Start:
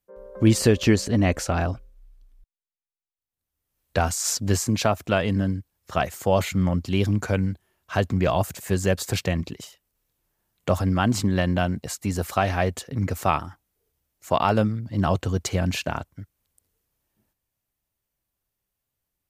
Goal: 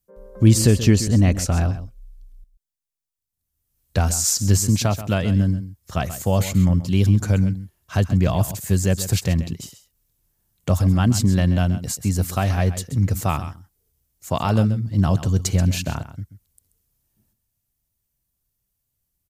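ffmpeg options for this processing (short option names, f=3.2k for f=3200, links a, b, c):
-filter_complex "[0:a]bass=f=250:g=11,treble=f=4k:g=10,asplit=2[a][b];[b]aecho=0:1:132:0.224[c];[a][c]amix=inputs=2:normalize=0,volume=-3.5dB"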